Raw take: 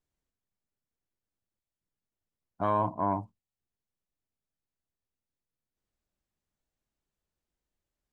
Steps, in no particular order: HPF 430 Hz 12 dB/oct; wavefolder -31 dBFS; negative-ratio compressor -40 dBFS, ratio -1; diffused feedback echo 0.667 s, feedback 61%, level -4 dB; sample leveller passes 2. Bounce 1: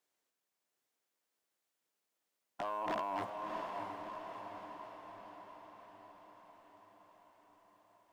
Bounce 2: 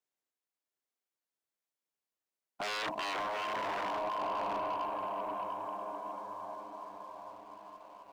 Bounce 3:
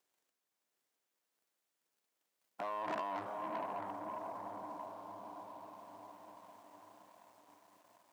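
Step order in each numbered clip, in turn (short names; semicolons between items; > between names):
negative-ratio compressor > wavefolder > HPF > sample leveller > diffused feedback echo; diffused feedback echo > wavefolder > HPF > negative-ratio compressor > sample leveller; negative-ratio compressor > diffused feedback echo > wavefolder > sample leveller > HPF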